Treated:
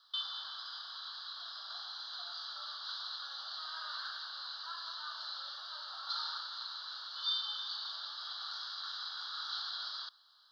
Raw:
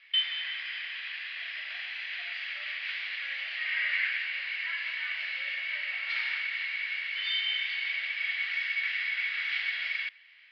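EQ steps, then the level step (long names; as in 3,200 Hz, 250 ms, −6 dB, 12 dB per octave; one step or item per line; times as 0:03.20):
high-pass filter 850 Hz 24 dB per octave
elliptic band-stop filter 1,300–3,900 Hz, stop band 50 dB
+8.0 dB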